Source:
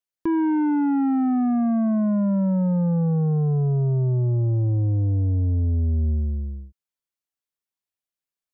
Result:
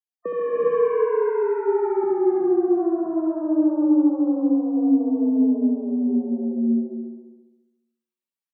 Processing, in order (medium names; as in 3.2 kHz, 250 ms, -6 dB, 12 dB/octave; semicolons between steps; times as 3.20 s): echo from a far wall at 44 m, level -12 dB; loudest bins only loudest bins 32; 2.03–2.68 s: bass shelf 400 Hz +9.5 dB; compression, threshold -27 dBFS, peak gain reduction 15 dB; on a send: flutter echo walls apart 11.8 m, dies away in 1.1 s; on the sum: gated-style reverb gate 430 ms rising, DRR -3.5 dB; frequency shift +160 Hz